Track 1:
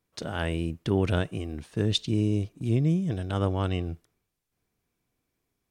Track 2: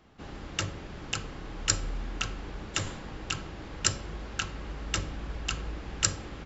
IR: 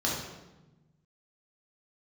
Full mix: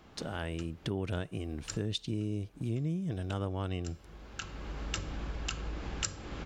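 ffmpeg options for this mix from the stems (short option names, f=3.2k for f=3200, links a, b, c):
-filter_complex "[0:a]dynaudnorm=f=520:g=3:m=5dB,volume=-2.5dB,asplit=2[a][b];[1:a]bandreject=f=1.9k:w=25,volume=3dB[c];[b]apad=whole_len=284511[d];[c][d]sidechaincompress=threshold=-42dB:ratio=10:attack=26:release=853[e];[a][e]amix=inputs=2:normalize=0,acompressor=threshold=-35dB:ratio=3"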